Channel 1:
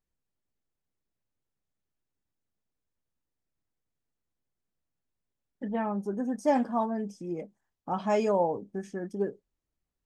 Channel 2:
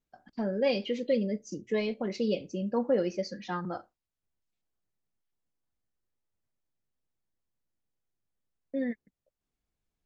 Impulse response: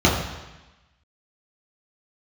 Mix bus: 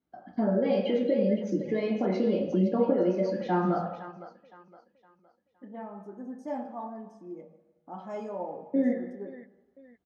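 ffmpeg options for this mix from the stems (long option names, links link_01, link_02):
-filter_complex "[0:a]volume=-10.5dB,asplit=2[link_01][link_02];[link_02]volume=-22dB[link_03];[1:a]lowpass=frequency=3000:poles=1,acompressor=threshold=-30dB:ratio=6,volume=2.5dB,asplit=3[link_04][link_05][link_06];[link_05]volume=-14dB[link_07];[link_06]volume=-6.5dB[link_08];[2:a]atrim=start_sample=2205[link_09];[link_03][link_07]amix=inputs=2:normalize=0[link_10];[link_10][link_09]afir=irnorm=-1:irlink=0[link_11];[link_08]aecho=0:1:514|1028|1542|2056|2570:1|0.36|0.13|0.0467|0.0168[link_12];[link_01][link_04][link_11][link_12]amix=inputs=4:normalize=0,highpass=frequency=590:poles=1,highshelf=frequency=2300:gain=-9.5"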